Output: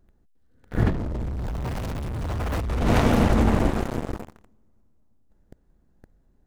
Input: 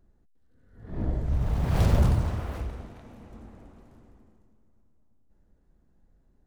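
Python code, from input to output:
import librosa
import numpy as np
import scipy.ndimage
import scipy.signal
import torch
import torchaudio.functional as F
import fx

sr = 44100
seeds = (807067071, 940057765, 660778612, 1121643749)

y = fx.leveller(x, sr, passes=5)
y = fx.over_compress(y, sr, threshold_db=-28.0, ratio=-1.0)
y = y * 10.0 ** (4.0 / 20.0)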